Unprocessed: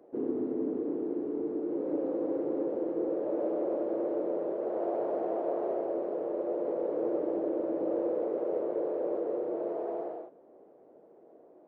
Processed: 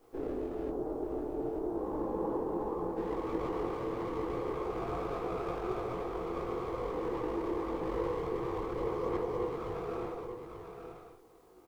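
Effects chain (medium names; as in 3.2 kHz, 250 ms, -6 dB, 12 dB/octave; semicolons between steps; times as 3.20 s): comb filter that takes the minimum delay 2.5 ms; 0.69–2.97 s: resonant high shelf 1.5 kHz -10.5 dB, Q 1.5; word length cut 12-bit, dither triangular; chorus voices 6, 0.91 Hz, delay 20 ms, depth 4.3 ms; delay 890 ms -7.5 dB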